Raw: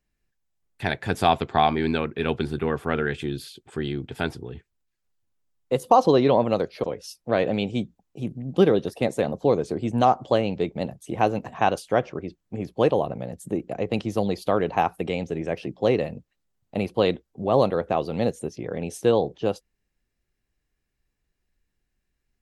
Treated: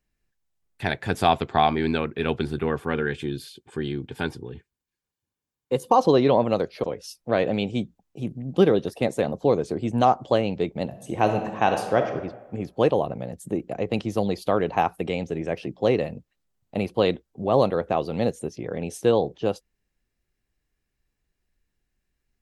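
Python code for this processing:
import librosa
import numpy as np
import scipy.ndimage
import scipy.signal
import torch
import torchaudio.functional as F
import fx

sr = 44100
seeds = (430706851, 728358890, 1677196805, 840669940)

y = fx.notch_comb(x, sr, f0_hz=660.0, at=(2.8, 6.01))
y = fx.reverb_throw(y, sr, start_s=10.86, length_s=1.23, rt60_s=1.1, drr_db=5.0)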